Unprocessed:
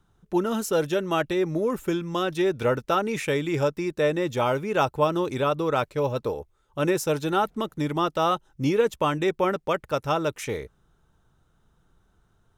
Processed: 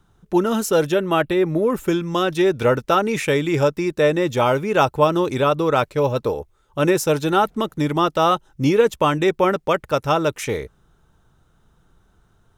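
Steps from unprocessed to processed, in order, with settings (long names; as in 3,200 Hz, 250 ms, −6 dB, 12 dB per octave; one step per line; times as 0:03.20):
0:00.92–0:01.75: parametric band 6,000 Hz −11.5 dB 0.66 octaves
level +6 dB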